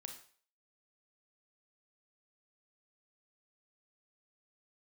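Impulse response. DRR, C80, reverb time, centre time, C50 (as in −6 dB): 4.0 dB, 12.0 dB, 0.45 s, 19 ms, 7.5 dB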